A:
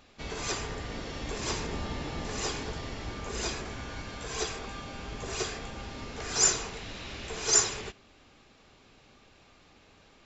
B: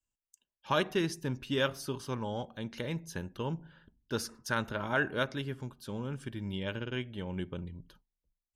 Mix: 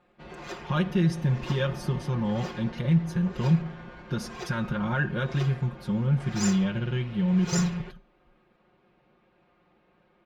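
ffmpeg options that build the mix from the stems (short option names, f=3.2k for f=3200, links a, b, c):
-filter_complex "[0:a]highpass=f=110:p=1,adynamicsmooth=sensitivity=6.5:basefreq=2.2k,volume=-5dB[a];[1:a]lowshelf=f=240:t=q:w=1.5:g=8.5,bandreject=f=251.7:t=h:w=4,bandreject=f=503.4:t=h:w=4,bandreject=f=755.1:t=h:w=4,bandreject=f=1.0068k:t=h:w=4,bandreject=f=1.2585k:t=h:w=4,bandreject=f=1.5102k:t=h:w=4,bandreject=f=1.7619k:t=h:w=4,bandreject=f=2.0136k:t=h:w=4,bandreject=f=2.2653k:t=h:w=4,bandreject=f=2.517k:t=h:w=4,bandreject=f=2.7687k:t=h:w=4,bandreject=f=3.0204k:t=h:w=4,bandreject=f=3.2721k:t=h:w=4,bandreject=f=3.5238k:t=h:w=4,bandreject=f=3.7755k:t=h:w=4,bandreject=f=4.0272k:t=h:w=4,bandreject=f=4.2789k:t=h:w=4,bandreject=f=4.5306k:t=h:w=4,bandreject=f=4.7823k:t=h:w=4,bandreject=f=5.034k:t=h:w=4,bandreject=f=5.2857k:t=h:w=4,bandreject=f=5.5374k:t=h:w=4,bandreject=f=5.7891k:t=h:w=4,bandreject=f=6.0408k:t=h:w=4,bandreject=f=6.2925k:t=h:w=4,bandreject=f=6.5442k:t=h:w=4,bandreject=f=6.7959k:t=h:w=4,bandreject=f=7.0476k:t=h:w=4,bandreject=f=7.2993k:t=h:w=4,bandreject=f=7.551k:t=h:w=4,bandreject=f=7.8027k:t=h:w=4,bandreject=f=8.0544k:t=h:w=4,bandreject=f=8.3061k:t=h:w=4,bandreject=f=8.5578k:t=h:w=4,bandreject=f=8.8095k:t=h:w=4,bandreject=f=9.0612k:t=h:w=4,alimiter=limit=-21.5dB:level=0:latency=1:release=71,volume=2.5dB[b];[a][b]amix=inputs=2:normalize=0,highshelf=f=4.9k:g=-11.5,aecho=1:1:5.6:0.97"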